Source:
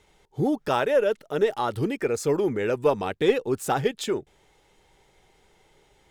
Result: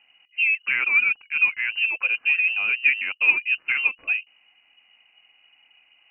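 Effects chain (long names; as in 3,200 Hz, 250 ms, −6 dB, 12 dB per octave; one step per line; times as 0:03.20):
tilt shelving filter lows +5 dB, about 1,300 Hz
voice inversion scrambler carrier 2,900 Hz
low-shelf EQ 220 Hz −10 dB
level −2 dB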